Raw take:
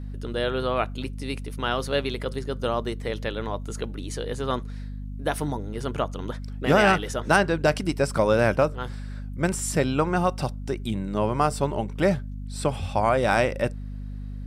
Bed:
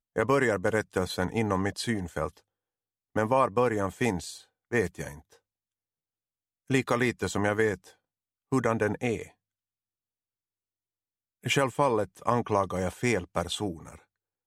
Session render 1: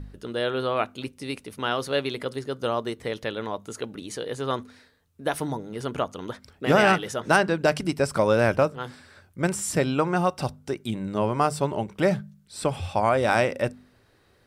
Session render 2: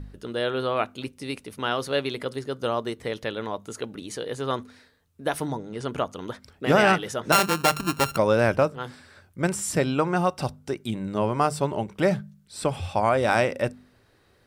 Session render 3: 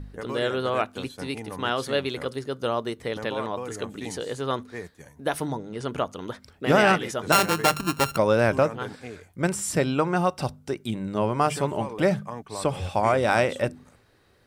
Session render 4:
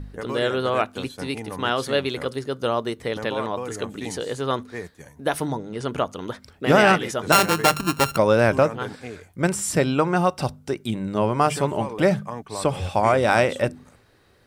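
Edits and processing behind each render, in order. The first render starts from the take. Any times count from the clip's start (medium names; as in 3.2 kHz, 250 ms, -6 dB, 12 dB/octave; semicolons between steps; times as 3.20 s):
de-hum 50 Hz, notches 5
5.46–5.89 s: low-pass 9.4 kHz 24 dB/octave; 7.32–8.17 s: sorted samples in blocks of 32 samples
add bed -10.5 dB
trim +3 dB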